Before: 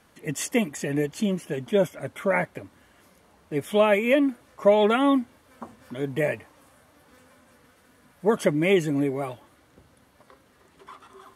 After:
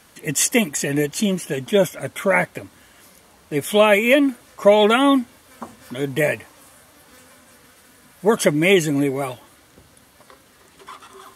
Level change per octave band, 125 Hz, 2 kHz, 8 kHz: +4.5 dB, +8.0 dB, +13.0 dB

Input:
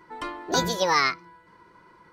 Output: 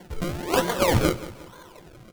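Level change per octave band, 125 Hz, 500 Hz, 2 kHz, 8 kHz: +10.5 dB, +4.5 dB, -3.5 dB, -0.5 dB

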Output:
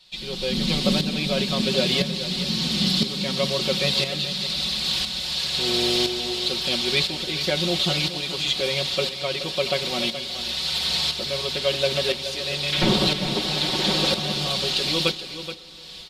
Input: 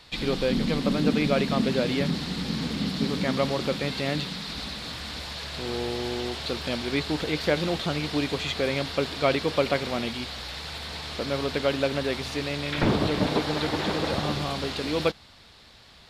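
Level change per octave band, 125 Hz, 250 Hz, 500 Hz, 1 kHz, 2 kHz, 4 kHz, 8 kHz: +1.0 dB, -0.5 dB, +0.5 dB, -1.0 dB, +2.5 dB, +10.5 dB, +9.5 dB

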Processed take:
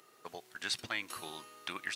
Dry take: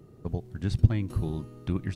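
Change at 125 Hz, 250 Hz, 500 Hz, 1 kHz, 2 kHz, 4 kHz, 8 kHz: -33.5 dB, -19.5 dB, -10.5 dB, +3.0 dB, +8.5 dB, +10.0 dB, no reading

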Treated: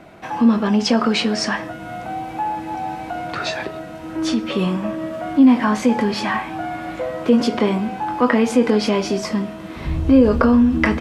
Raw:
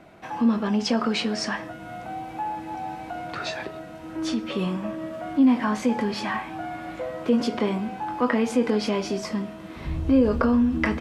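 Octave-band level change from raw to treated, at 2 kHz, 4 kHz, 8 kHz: +6.5 dB, +6.5 dB, +6.5 dB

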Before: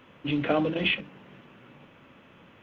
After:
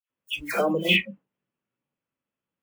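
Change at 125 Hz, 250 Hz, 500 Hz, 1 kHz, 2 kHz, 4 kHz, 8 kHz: -1.0 dB, -1.5 dB, +2.5 dB, +2.0 dB, +5.0 dB, +5.5 dB, no reading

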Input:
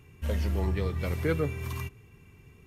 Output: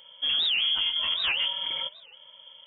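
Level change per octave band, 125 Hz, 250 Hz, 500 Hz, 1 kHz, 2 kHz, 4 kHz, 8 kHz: under -30 dB, under -20 dB, -17.0 dB, +1.0 dB, +8.5 dB, +27.0 dB, under -30 dB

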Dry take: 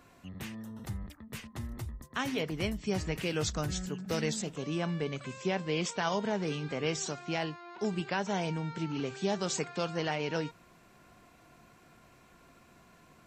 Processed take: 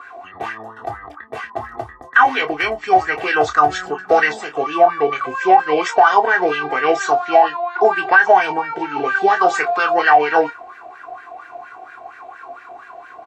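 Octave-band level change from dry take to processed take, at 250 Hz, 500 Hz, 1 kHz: +6.5 dB, +17.5 dB, +26.0 dB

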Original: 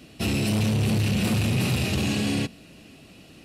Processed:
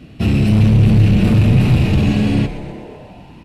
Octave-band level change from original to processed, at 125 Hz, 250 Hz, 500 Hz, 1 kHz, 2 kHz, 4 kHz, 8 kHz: +13.0 dB, +10.5 dB, +7.5 dB, +6.0 dB, +3.5 dB, +0.5 dB, no reading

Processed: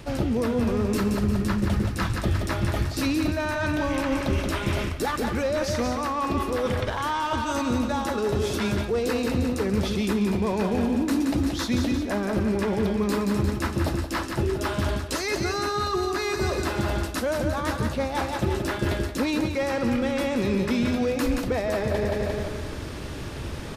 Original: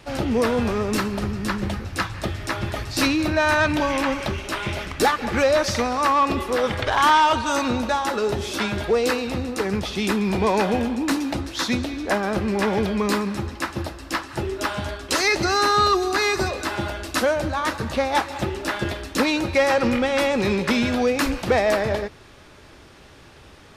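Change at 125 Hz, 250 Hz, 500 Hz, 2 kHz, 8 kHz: +2.5 dB, -0.5 dB, -4.0 dB, -7.0 dB, -5.0 dB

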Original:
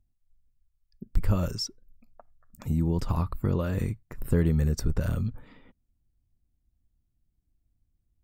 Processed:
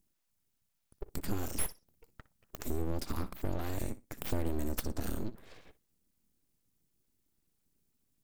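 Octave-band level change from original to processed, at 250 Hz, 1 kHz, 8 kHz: -9.5 dB, -5.0 dB, +1.0 dB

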